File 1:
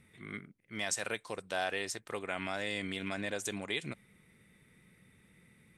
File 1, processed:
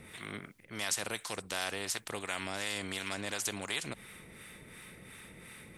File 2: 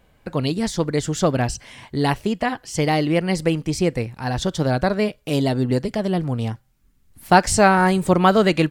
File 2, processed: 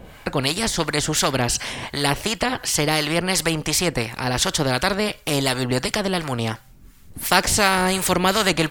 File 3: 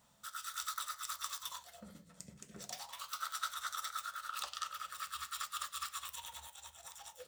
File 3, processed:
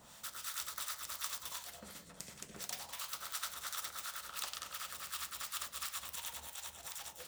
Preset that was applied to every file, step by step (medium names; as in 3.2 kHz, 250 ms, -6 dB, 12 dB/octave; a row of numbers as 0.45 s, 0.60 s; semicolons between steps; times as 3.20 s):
harmonic tremolo 2.8 Hz, depth 70%, crossover 770 Hz; spectrum-flattening compressor 2:1; trim +2 dB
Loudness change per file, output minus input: +0.5 LU, -0.5 LU, +0.5 LU